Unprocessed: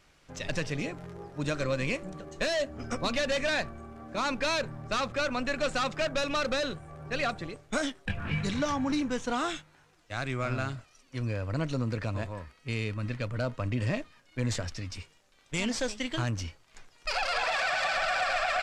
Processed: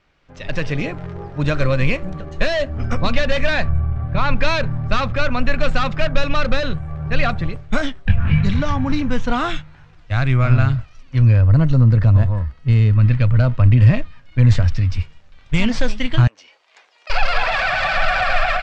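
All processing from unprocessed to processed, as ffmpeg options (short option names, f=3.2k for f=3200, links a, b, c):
-filter_complex "[0:a]asettb=1/sr,asplit=3[a][b][c];[a]atrim=end=3.684[d];[b]atrim=start=3.68:end=4.35,asetpts=PTS-STARTPTS,afade=t=in:d=0.004:c=qsin,afade=t=out:st=0.666:d=0.004:c=qsin,lowpass=4k,lowshelf=f=180:t=q:w=3:g=6.5[e];[c]atrim=start=4.346[f];[d][e]acrossfade=d=0.004:c1=hsin:c2=qsin[g];[g][f]acrossfade=d=0.004:c1=qsin:c2=hsin,asettb=1/sr,asplit=3[h][i][j];[h]atrim=end=11.414[k];[i]atrim=start=11.41:end=12.95,asetpts=PTS-STARTPTS,afade=t=in:d=0.004:c=qsin,afade=t=out:st=1.536:d=0.004:c=qsin,equalizer=f=2.9k:w=0.48:g=-5,bandreject=f=2.4k:w=8[l];[j]atrim=start=12.946[m];[k][l]acrossfade=d=0.004:c1=hsin:c2=qsin[n];[n][m]acrossfade=d=0.004:c1=qsin:c2=hsin,asettb=1/sr,asplit=3[o][p][q];[o]atrim=end=16.274[r];[p]atrim=start=16.27:end=17.1,asetpts=PTS-STARTPTS,afade=t=in:d=0.004:c=qsin,afade=t=out:st=0.826:d=0.004:c=qsin,equalizer=f=1.4k:w=1.9:g=-5,acompressor=threshold=-42dB:ratio=5:attack=3.2:release=140:knee=1:detection=peak,highpass=f=450:w=0.5412,highpass=f=450:w=1.3066[s];[q]atrim=start=17.096[t];[r][s]acrossfade=d=0.004:c1=hsin:c2=qsin[u];[u][t]acrossfade=d=0.004:c1=qsin:c2=hsin,lowpass=3.6k,asubboost=boost=6.5:cutoff=130,dynaudnorm=f=350:g=3:m=11.5dB"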